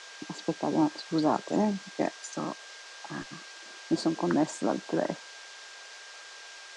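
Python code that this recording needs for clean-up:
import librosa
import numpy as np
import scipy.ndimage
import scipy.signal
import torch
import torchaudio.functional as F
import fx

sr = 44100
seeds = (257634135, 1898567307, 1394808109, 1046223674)

y = fx.notch(x, sr, hz=1600.0, q=30.0)
y = fx.noise_reduce(y, sr, print_start_s=5.42, print_end_s=5.92, reduce_db=27.0)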